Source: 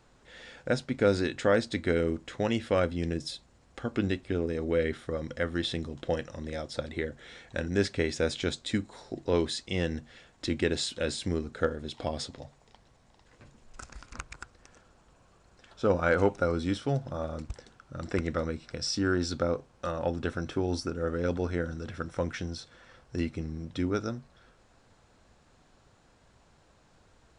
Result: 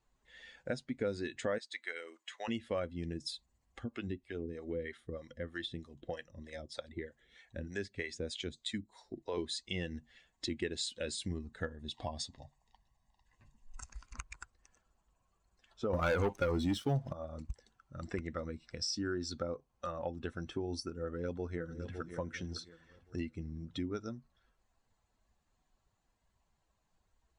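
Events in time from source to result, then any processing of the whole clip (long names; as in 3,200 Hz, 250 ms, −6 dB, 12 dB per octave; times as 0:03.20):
0:01.58–0:02.48: high-pass filter 830 Hz
0:03.84–0:09.38: two-band tremolo in antiphase 3.2 Hz, crossover 490 Hz
0:11.30–0:13.86: comb filter 1.1 ms, depth 32%
0:15.93–0:17.13: leveller curve on the samples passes 3
0:21.00–0:22.08: delay throw 560 ms, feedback 40%, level −10 dB
whole clip: spectral dynamics exaggerated over time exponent 1.5; downward compressor 2.5 to 1, threshold −44 dBFS; level +5.5 dB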